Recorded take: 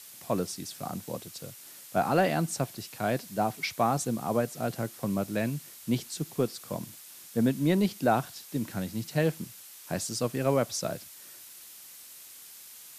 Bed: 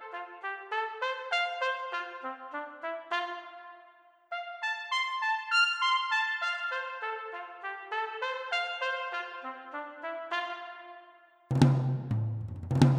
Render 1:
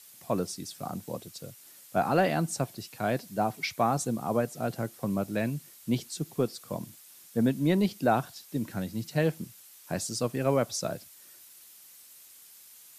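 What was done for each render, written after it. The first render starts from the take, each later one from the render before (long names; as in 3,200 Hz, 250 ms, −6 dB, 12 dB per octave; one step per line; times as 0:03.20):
broadband denoise 6 dB, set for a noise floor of −49 dBFS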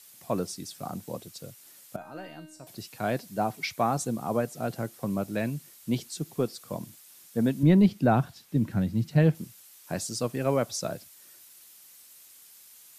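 0:01.96–0:02.67: tuned comb filter 310 Hz, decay 0.73 s, mix 90%
0:07.63–0:09.35: bass and treble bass +10 dB, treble −7 dB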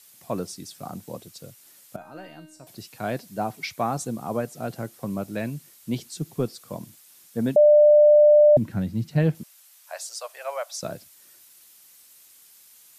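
0:06.05–0:06.50: low-shelf EQ 130 Hz +9 dB
0:07.56–0:08.57: beep over 596 Hz −10.5 dBFS
0:09.43–0:10.83: elliptic high-pass filter 600 Hz, stop band 60 dB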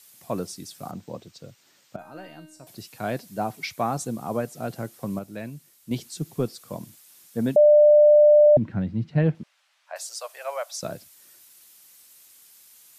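0:00.91–0:01.99: moving average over 4 samples
0:05.19–0:05.91: clip gain −6 dB
0:08.46–0:09.96: low-pass filter 2,900 Hz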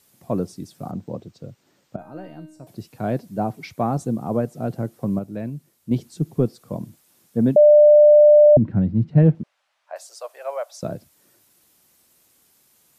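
tilt shelving filter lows +8 dB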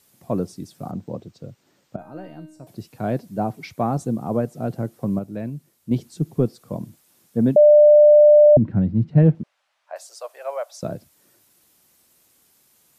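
no processing that can be heard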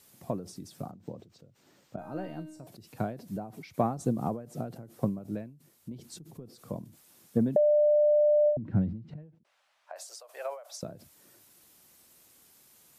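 downward compressor 12 to 1, threshold −21 dBFS, peak gain reduction 12.5 dB
every ending faded ahead of time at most 110 dB per second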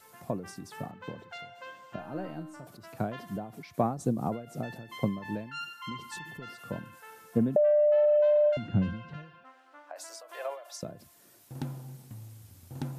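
mix in bed −14.5 dB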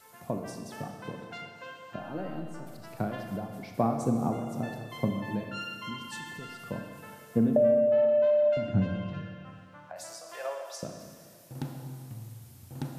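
four-comb reverb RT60 2 s, combs from 27 ms, DRR 4 dB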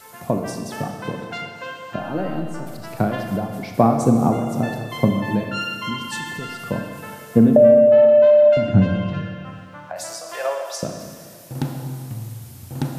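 level +11.5 dB
brickwall limiter −2 dBFS, peak gain reduction 1 dB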